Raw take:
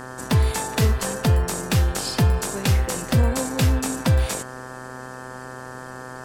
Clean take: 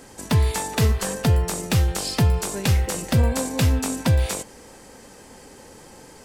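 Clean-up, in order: de-hum 127.8 Hz, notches 14

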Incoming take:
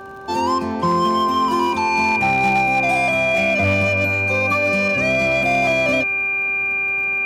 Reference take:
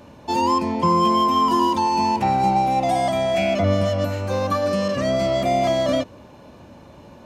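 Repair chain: clip repair -11 dBFS; de-click; de-hum 390 Hz, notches 4; band-stop 2.4 kHz, Q 30

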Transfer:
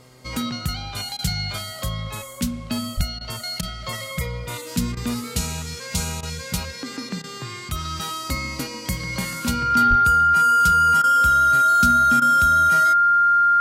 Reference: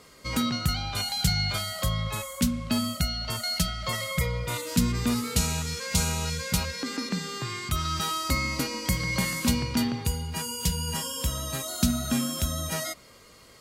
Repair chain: de-hum 126.4 Hz, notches 7; band-stop 1.4 kHz, Q 30; 2.96–3.08 s: high-pass 140 Hz 24 dB/octave; 9.89–10.01 s: high-pass 140 Hz 24 dB/octave; interpolate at 1.17/3.19/3.61/4.95/6.21/7.22/11.02/12.20 s, 17 ms

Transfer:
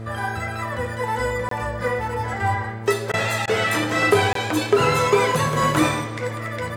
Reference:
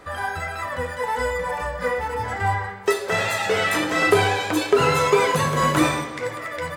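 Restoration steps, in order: de-hum 112.2 Hz, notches 6; interpolate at 1.49/4.33 s, 23 ms; interpolate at 3.12/3.46 s, 15 ms

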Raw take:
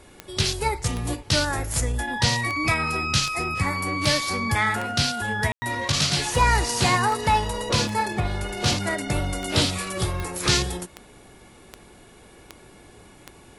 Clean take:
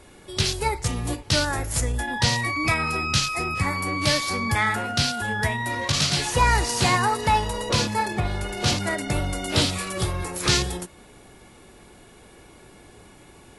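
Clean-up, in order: de-click; room tone fill 5.52–5.62 s

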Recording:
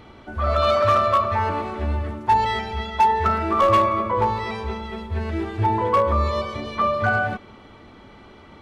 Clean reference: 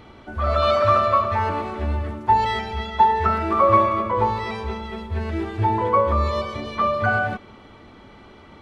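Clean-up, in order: clip repair -11.5 dBFS

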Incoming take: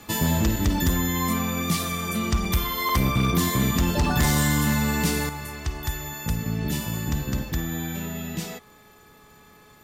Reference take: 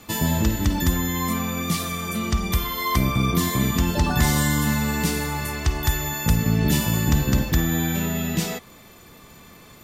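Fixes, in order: clip repair -15.5 dBFS; de-hum 423.5 Hz, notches 4; interpolate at 0.56/2.45/2.89/4.05 s, 2.9 ms; gain correction +7 dB, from 5.29 s

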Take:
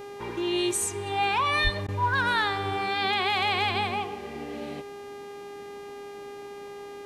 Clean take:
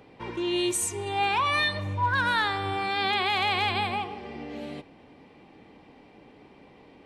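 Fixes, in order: de-hum 404.8 Hz, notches 37; 1.63–1.75 s: high-pass 140 Hz 24 dB/octave; interpolate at 1.87 s, 13 ms

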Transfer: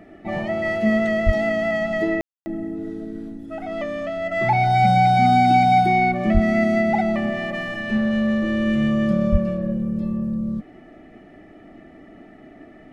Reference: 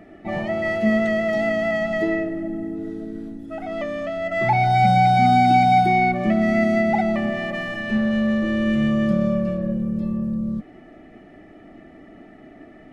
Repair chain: 1.25–1.37 s: high-pass 140 Hz 24 dB/octave; 6.33–6.45 s: high-pass 140 Hz 24 dB/octave; 9.31–9.43 s: high-pass 140 Hz 24 dB/octave; room tone fill 2.21–2.46 s

